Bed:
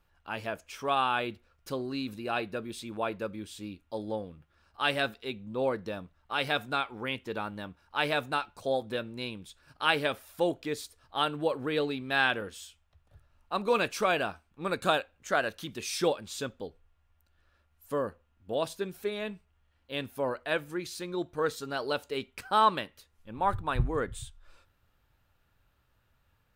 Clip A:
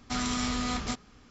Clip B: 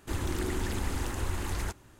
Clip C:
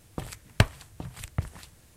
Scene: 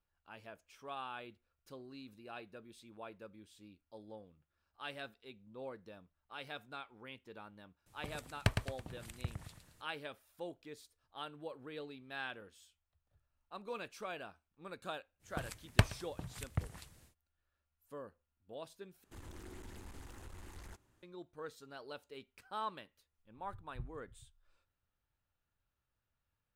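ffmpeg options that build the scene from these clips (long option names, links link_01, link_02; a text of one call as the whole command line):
ffmpeg -i bed.wav -i cue0.wav -i cue1.wav -i cue2.wav -filter_complex "[3:a]asplit=2[link_01][link_02];[0:a]volume=-17dB[link_03];[link_01]aecho=1:1:110|220|330|440|550:0.501|0.205|0.0842|0.0345|0.0142[link_04];[link_02]asplit=2[link_05][link_06];[link_06]adelay=122.4,volume=-21dB,highshelf=frequency=4000:gain=-2.76[link_07];[link_05][link_07]amix=inputs=2:normalize=0[link_08];[2:a]aeval=exprs='(tanh(28.2*val(0)+0.35)-tanh(0.35))/28.2':channel_layout=same[link_09];[link_03]asplit=2[link_10][link_11];[link_10]atrim=end=19.044[link_12];[link_09]atrim=end=1.99,asetpts=PTS-STARTPTS,volume=-16dB[link_13];[link_11]atrim=start=21.026[link_14];[link_04]atrim=end=1.96,asetpts=PTS-STARTPTS,volume=-11dB,afade=type=in:duration=0.004:curve=hsin,afade=type=out:start_time=1.956:duration=0.004:curve=hsin,adelay=346626S[link_15];[link_08]atrim=end=1.96,asetpts=PTS-STARTPTS,volume=-6.5dB,afade=type=in:duration=0.1,afade=type=out:start_time=1.86:duration=0.1,adelay=15190[link_16];[link_12][link_13]acrossfade=duration=0.004:curve1=hsin:curve2=hsin[link_17];[link_17][link_14]acrossfade=duration=0.004:curve1=hsin:curve2=hsin[link_18];[link_18][link_15][link_16]amix=inputs=3:normalize=0" out.wav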